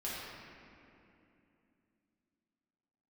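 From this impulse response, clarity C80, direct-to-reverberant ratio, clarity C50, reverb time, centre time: -1.0 dB, -8.5 dB, -3.0 dB, 2.8 s, 150 ms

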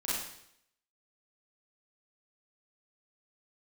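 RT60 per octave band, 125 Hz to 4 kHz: 0.70 s, 0.70 s, 0.75 s, 0.70 s, 0.70 s, 0.70 s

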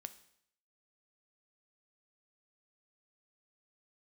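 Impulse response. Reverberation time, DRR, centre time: 0.70 s, 11.0 dB, 5 ms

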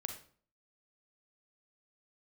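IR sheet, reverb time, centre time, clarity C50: 0.50 s, 17 ms, 7.0 dB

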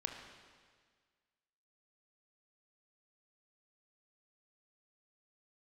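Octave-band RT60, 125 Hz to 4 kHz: 1.7 s, 1.7 s, 1.7 s, 1.7 s, 1.7 s, 1.7 s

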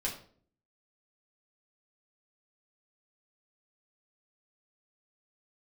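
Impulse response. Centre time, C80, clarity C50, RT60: 23 ms, 12.5 dB, 8.0 dB, 0.50 s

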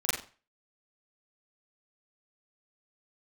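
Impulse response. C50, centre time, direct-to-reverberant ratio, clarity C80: 2.5 dB, 51 ms, -10.5 dB, 7.5 dB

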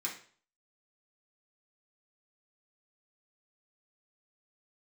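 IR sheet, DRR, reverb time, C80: -4.5 dB, 0.45 s, 12.0 dB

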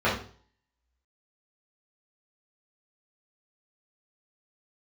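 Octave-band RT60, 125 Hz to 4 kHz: 0.55 s, 0.45 s, 0.45 s, 0.45 s, 0.40 s, 0.45 s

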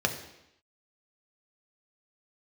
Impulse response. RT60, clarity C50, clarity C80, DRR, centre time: 0.85 s, 10.0 dB, 12.0 dB, 3.5 dB, 15 ms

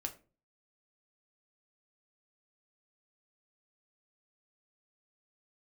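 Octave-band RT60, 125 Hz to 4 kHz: 0.55 s, 0.50 s, 0.40 s, 0.30 s, 0.30 s, 0.25 s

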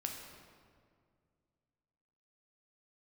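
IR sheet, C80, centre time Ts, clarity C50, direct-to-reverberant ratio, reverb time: 5.5 dB, 58 ms, 4.0 dB, 1.5 dB, 2.1 s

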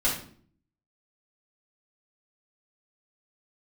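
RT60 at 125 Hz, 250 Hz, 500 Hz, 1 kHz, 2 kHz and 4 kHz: 0.80 s, 0.75 s, 0.60 s, 0.45 s, 0.40 s, 0.40 s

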